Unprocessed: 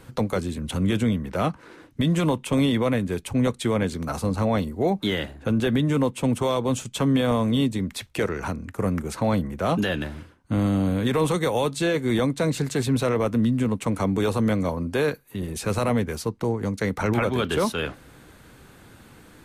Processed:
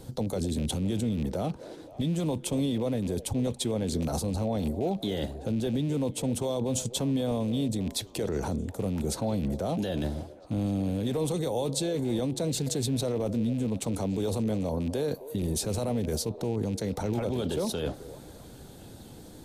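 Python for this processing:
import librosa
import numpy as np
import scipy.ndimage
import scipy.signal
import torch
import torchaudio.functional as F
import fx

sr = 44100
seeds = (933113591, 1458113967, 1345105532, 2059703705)

p1 = fx.rattle_buzz(x, sr, strikes_db=-26.0, level_db=-26.0)
p2 = fx.over_compress(p1, sr, threshold_db=-30.0, ratio=-0.5)
p3 = p1 + F.gain(torch.from_numpy(p2), 0.0).numpy()
p4 = fx.band_shelf(p3, sr, hz=1700.0, db=-12.5, octaves=1.7)
p5 = fx.echo_stepped(p4, sr, ms=261, hz=480.0, octaves=0.7, feedback_pct=70, wet_db=-12)
y = F.gain(torch.from_numpy(p5), -7.5).numpy()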